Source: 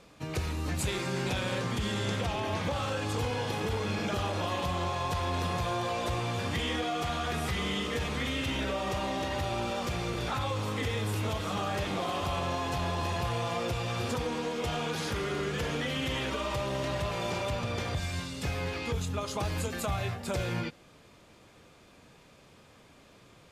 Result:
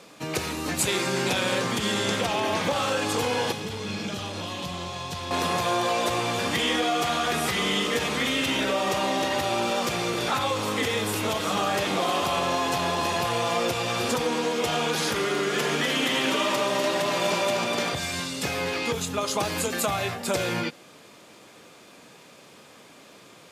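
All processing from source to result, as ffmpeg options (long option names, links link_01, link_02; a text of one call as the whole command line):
ffmpeg -i in.wav -filter_complex "[0:a]asettb=1/sr,asplit=3[link_01][link_02][link_03];[link_01]atrim=end=3.524[link_04];[link_02]atrim=start=3.52:end=5.31,asetpts=PTS-STARTPTS,afade=type=in:duration=0.004:curve=qsin,afade=type=out:start_time=1.786:duration=0.004:curve=qsin,highshelf=frequency=6400:gain=-11.5,acrossover=split=230|3000[link_05][link_06][link_07];[link_06]acompressor=threshold=-46dB:ratio=3:attack=3.2:release=140:knee=2.83:detection=peak[link_08];[link_05][link_08][link_07]amix=inputs=3:normalize=0,asplit=2[link_09][link_10];[link_10]adelay=21,volume=-14dB[link_11];[link_09][link_11]amix=inputs=2:normalize=0,atrim=end_sample=78939[link_12];[link_03]atrim=start=5.306[link_13];[link_04][link_12]acrossfade=duration=0.004:curve1=hsin:curve2=qsin[link_14];[link_14][link_13]acrossfade=duration=0.004:curve1=qsin:curve2=hsin,asettb=1/sr,asplit=3[link_15][link_16][link_17];[link_15]atrim=end=15.254[link_18];[link_16]atrim=start=15.25:end=17.93,asetpts=PTS-STARTPTS,afade=type=in:duration=0.004:curve=qsin,afade=type=out:start_time=2.676:duration=0.004:curve=qsin,highpass=frequency=150:width=0.5412,highpass=frequency=150:width=1.3066,bandreject=frequency=490:width=10,aecho=1:1:247:0.562,atrim=end_sample=118188[link_19];[link_17]atrim=start=17.926[link_20];[link_18][link_19]acrossfade=duration=0.004:curve1=hsin:curve2=qsin[link_21];[link_21][link_20]acrossfade=duration=0.004:curve1=qsin:curve2=hsin,highpass=200,highshelf=frequency=5100:gain=5,volume=7.5dB" out.wav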